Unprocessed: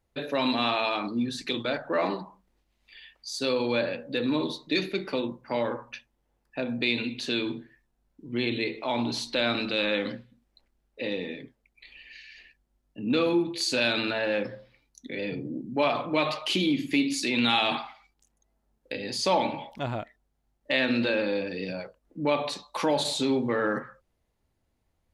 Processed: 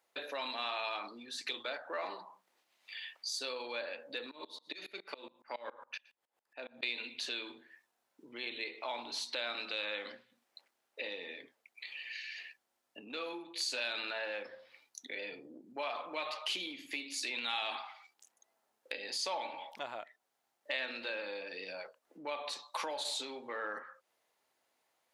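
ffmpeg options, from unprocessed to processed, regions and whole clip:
ffmpeg -i in.wav -filter_complex "[0:a]asettb=1/sr,asplit=3[link_01][link_02][link_03];[link_01]atrim=end=4.314[link_04];[link_02]atrim=start=4.31:end=6.83,asetpts=PTS-STARTPTS,afade=type=in:duration=0.004:curve=qsin,afade=type=out:start_time=2.516:duration=0.004:curve=qsin,bandreject=frequency=5800:width=14,aecho=1:1:117:0.0891,atrim=end_sample=111132,aeval=exprs='val(0)*pow(10,-24*if(lt(mod(-7.2*n/s,1),2*abs(-7.2)/1000),1-mod(-7.2*n/s,1)/(2*abs(-7.2)/1000),(mod(-7.2*n/s,1)-2*abs(-7.2)/1000)/(1-2*abs(-7.2)/1000))/20)':channel_layout=same[link_05];[link_03]atrim=start=6.826[link_06];[link_04][link_05]acrossfade=duration=0.004:curve1=hsin:curve2=qsin[link_07];[link_07][link_06]acrossfade=duration=0.004:curve1=qsin:curve2=hsin,acompressor=threshold=-45dB:ratio=2.5,highpass=660,volume=5dB" out.wav

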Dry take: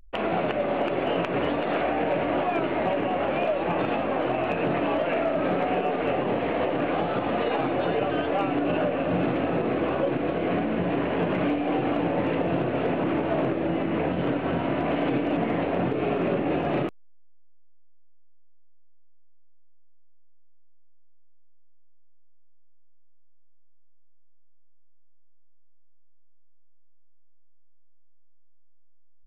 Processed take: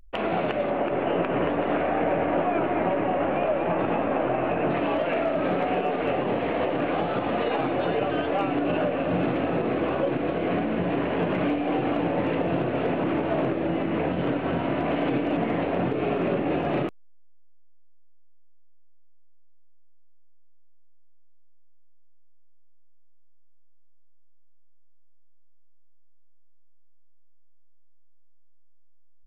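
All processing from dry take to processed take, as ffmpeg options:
ffmpeg -i in.wav -filter_complex "[0:a]asettb=1/sr,asplit=3[link_01][link_02][link_03];[link_01]atrim=end=0.704[link_04];[link_02]atrim=start=0.7:end=4.7,asetpts=PTS-STARTPTS,afade=type=in:duration=0.004:curve=qsin,afade=type=out:start_time=3.996:duration=0.004:curve=qsin,lowpass=2300,aecho=1:1:225:0.531,atrim=end_sample=176400[link_05];[link_03]atrim=start=4.696[link_06];[link_04][link_05]acrossfade=duration=0.004:curve1=hsin:curve2=qsin[link_07];[link_07][link_06]acrossfade=duration=0.004:curve1=qsin:curve2=hsin" out.wav

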